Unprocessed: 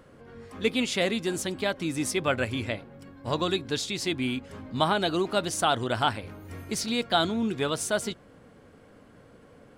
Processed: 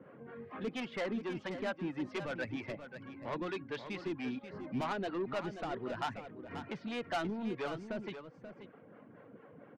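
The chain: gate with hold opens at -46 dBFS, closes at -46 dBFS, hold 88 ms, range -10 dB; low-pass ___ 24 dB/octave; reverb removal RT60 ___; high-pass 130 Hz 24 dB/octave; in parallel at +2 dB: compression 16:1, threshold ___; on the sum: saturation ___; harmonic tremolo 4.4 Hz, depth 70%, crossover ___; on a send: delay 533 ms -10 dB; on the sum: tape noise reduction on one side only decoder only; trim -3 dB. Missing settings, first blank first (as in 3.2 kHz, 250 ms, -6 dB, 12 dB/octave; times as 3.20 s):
2.6 kHz, 0.76 s, -40 dBFS, -26 dBFS, 450 Hz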